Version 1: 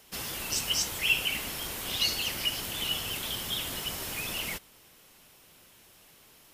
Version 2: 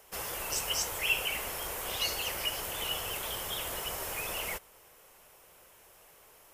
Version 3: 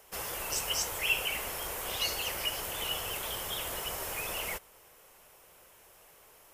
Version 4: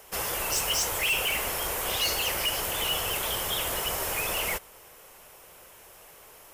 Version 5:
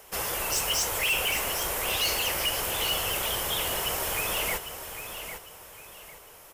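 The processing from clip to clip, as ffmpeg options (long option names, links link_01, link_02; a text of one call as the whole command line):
ffmpeg -i in.wav -af "equalizer=frequency=125:width_type=o:width=1:gain=-5,equalizer=frequency=250:width_type=o:width=1:gain=-10,equalizer=frequency=500:width_type=o:width=1:gain=6,equalizer=frequency=1000:width_type=o:width=1:gain=3,equalizer=frequency=4000:width_type=o:width=1:gain=-8" out.wav
ffmpeg -i in.wav -af anull out.wav
ffmpeg -i in.wav -af "asoftclip=type=hard:threshold=-29.5dB,volume=7dB" out.wav
ffmpeg -i in.wav -af "aecho=1:1:802|1604|2406:0.335|0.104|0.0322" out.wav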